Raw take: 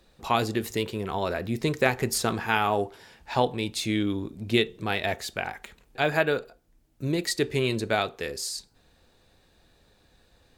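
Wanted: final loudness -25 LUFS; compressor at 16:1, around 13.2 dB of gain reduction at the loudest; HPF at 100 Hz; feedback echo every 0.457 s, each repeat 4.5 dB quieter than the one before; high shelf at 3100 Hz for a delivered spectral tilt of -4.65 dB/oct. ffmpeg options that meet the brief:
-af "highpass=100,highshelf=f=3.1k:g=-8.5,acompressor=threshold=-31dB:ratio=16,aecho=1:1:457|914|1371|1828|2285|2742|3199|3656|4113:0.596|0.357|0.214|0.129|0.0772|0.0463|0.0278|0.0167|0.01,volume=11.5dB"

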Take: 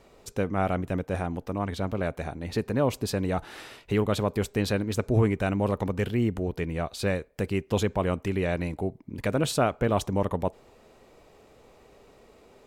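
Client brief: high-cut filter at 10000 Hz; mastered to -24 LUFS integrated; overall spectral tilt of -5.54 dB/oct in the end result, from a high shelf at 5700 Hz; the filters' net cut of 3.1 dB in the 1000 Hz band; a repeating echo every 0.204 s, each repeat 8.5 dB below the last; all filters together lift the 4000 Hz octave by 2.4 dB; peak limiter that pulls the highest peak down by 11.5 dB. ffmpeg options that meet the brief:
-af "lowpass=10k,equalizer=f=1k:t=o:g=-4.5,equalizer=f=4k:t=o:g=6.5,highshelf=f=5.7k:g=-9,alimiter=limit=-24dB:level=0:latency=1,aecho=1:1:204|408|612|816:0.376|0.143|0.0543|0.0206,volume=9.5dB"

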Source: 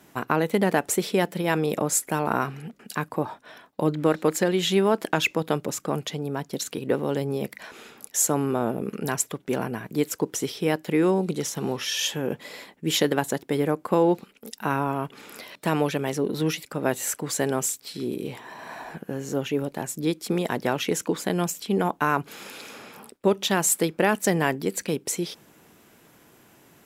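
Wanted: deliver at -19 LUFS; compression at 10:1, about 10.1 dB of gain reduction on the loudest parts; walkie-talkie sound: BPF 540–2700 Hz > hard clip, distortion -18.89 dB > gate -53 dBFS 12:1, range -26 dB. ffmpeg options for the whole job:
-af "acompressor=threshold=-26dB:ratio=10,highpass=540,lowpass=2.7k,asoftclip=type=hard:threshold=-24dB,agate=range=-26dB:threshold=-53dB:ratio=12,volume=20dB"

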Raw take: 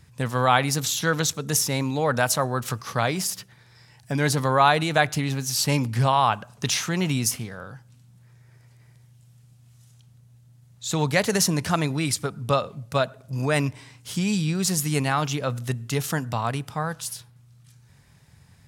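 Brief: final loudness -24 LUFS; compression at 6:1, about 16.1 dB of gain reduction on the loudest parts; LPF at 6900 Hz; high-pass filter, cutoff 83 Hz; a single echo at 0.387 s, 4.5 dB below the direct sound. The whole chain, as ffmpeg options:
-af "highpass=83,lowpass=6.9k,acompressor=threshold=-31dB:ratio=6,aecho=1:1:387:0.596,volume=10dB"

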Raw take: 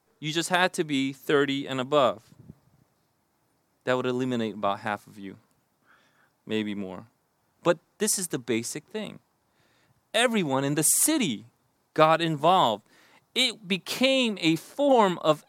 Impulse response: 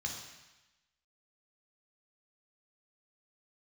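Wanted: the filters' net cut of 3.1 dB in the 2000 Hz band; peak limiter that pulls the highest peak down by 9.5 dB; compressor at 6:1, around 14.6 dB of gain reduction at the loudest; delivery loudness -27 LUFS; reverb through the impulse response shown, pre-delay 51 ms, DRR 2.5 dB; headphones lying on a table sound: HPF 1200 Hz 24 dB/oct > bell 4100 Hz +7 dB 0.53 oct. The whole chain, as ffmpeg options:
-filter_complex "[0:a]equalizer=f=2k:t=o:g=-4.5,acompressor=threshold=-32dB:ratio=6,alimiter=level_in=3.5dB:limit=-24dB:level=0:latency=1,volume=-3.5dB,asplit=2[a][b];[1:a]atrim=start_sample=2205,adelay=51[c];[b][c]afir=irnorm=-1:irlink=0,volume=-4dB[d];[a][d]amix=inputs=2:normalize=0,highpass=f=1.2k:w=0.5412,highpass=f=1.2k:w=1.3066,equalizer=f=4.1k:t=o:w=0.53:g=7,volume=12.5dB"

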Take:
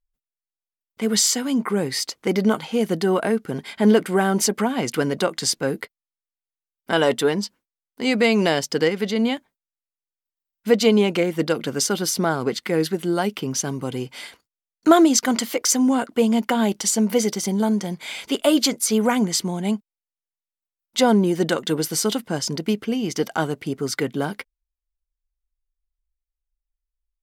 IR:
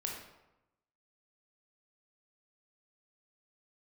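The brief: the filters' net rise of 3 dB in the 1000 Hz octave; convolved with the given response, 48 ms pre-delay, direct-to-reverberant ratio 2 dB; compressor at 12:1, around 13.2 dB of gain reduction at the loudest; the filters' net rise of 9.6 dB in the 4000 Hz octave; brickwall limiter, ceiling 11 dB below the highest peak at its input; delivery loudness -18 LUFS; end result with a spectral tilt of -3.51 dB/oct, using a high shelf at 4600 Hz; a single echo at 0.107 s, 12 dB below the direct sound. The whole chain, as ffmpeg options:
-filter_complex "[0:a]equalizer=f=1k:t=o:g=3.5,equalizer=f=4k:t=o:g=8,highshelf=f=4.6k:g=7.5,acompressor=threshold=-20dB:ratio=12,alimiter=limit=-17.5dB:level=0:latency=1,aecho=1:1:107:0.251,asplit=2[a][b];[1:a]atrim=start_sample=2205,adelay=48[c];[b][c]afir=irnorm=-1:irlink=0,volume=-3dB[d];[a][d]amix=inputs=2:normalize=0,volume=7.5dB"

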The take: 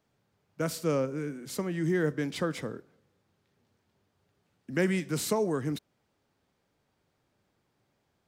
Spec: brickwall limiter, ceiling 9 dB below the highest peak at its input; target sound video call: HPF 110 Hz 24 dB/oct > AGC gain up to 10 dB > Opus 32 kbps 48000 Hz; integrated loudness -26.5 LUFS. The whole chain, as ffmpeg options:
-af "alimiter=level_in=1dB:limit=-24dB:level=0:latency=1,volume=-1dB,highpass=f=110:w=0.5412,highpass=f=110:w=1.3066,dynaudnorm=m=10dB,volume=8.5dB" -ar 48000 -c:a libopus -b:a 32k

